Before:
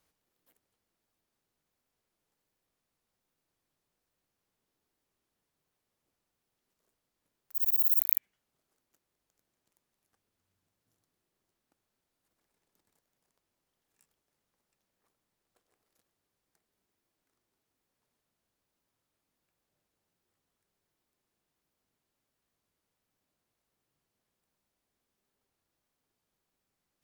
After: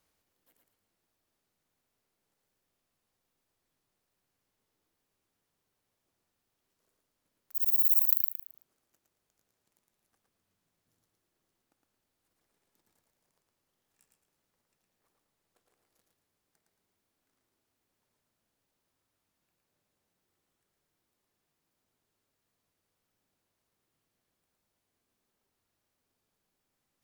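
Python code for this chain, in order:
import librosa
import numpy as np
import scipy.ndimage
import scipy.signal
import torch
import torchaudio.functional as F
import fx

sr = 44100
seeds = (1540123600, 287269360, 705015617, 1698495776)

y = fx.echo_feedback(x, sr, ms=112, feedback_pct=30, wet_db=-3.5)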